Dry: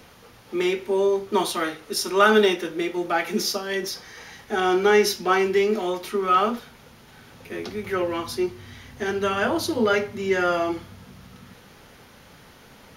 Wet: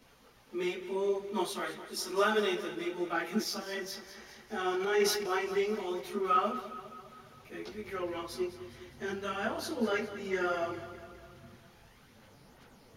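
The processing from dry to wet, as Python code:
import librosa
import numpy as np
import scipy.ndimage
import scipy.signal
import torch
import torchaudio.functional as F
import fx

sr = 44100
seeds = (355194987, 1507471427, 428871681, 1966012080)

y = fx.chorus_voices(x, sr, voices=6, hz=0.66, base_ms=18, depth_ms=4.7, mix_pct=60)
y = fx.echo_feedback(y, sr, ms=204, feedback_pct=58, wet_db=-13.5)
y = fx.transient(y, sr, attack_db=-6, sustain_db=6, at=(4.74, 5.38))
y = y * librosa.db_to_amplitude(-8.0)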